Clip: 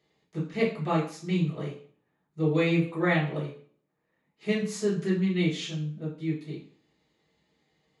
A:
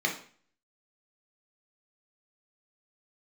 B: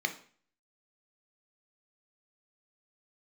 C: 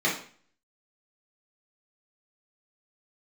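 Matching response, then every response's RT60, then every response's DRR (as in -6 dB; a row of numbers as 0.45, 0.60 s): C; 0.45, 0.45, 0.45 s; -0.5, 5.5, -7.0 dB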